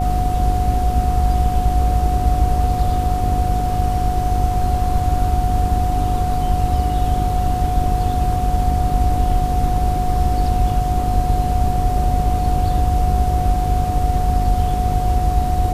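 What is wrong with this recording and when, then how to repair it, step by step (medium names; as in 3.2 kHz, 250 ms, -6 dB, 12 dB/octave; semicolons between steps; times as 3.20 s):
buzz 50 Hz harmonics 9 -22 dBFS
whine 730 Hz -21 dBFS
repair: de-hum 50 Hz, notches 9; band-stop 730 Hz, Q 30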